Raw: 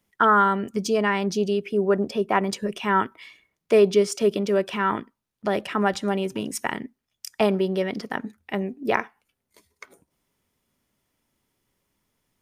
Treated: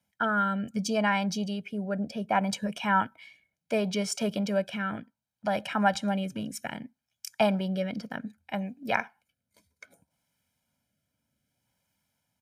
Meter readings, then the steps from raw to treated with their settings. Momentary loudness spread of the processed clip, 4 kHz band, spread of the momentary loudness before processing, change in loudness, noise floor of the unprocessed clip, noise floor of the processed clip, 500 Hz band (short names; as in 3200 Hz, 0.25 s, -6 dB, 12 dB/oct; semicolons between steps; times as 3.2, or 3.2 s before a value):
12 LU, -3.0 dB, 13 LU, -6.0 dB, -81 dBFS, under -85 dBFS, -9.5 dB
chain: HPF 82 Hz; comb 1.3 ms, depth 83%; rotary speaker horn 0.65 Hz; gain -3.5 dB